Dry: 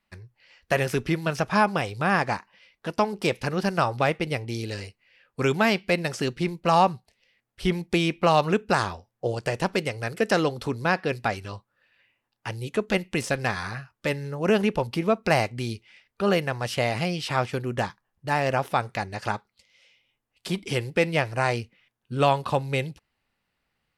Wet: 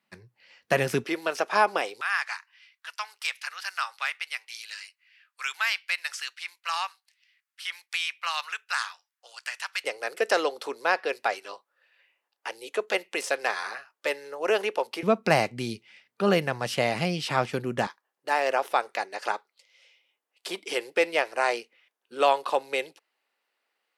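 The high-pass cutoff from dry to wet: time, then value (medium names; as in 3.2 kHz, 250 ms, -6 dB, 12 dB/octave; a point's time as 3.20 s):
high-pass 24 dB/octave
140 Hz
from 1.04 s 340 Hz
from 2.01 s 1.3 kHz
from 9.84 s 410 Hz
from 15.03 s 140 Hz
from 17.87 s 370 Hz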